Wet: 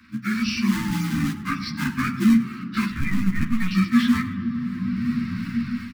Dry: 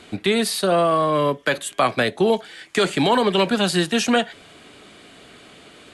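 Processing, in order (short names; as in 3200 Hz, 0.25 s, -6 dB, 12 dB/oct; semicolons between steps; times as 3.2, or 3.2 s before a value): inharmonic rescaling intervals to 82%; 2.9–3.71 LPC vocoder at 8 kHz pitch kept; reverb removal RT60 0.54 s; in parallel at -7.5 dB: decimation with a swept rate 36×, swing 160% 2.7 Hz; on the sum: echo 0.1 s -19 dB; on a send at -12 dB: reverb RT60 3.5 s, pre-delay 4 ms; on the sum: AGC gain up to 16 dB; elliptic band-stop 260–1200 Hz, stop band 60 dB; low shelf 300 Hz +6.5 dB; harmonic-percussive split percussive -5 dB; low shelf 96 Hz -12 dB; ensemble effect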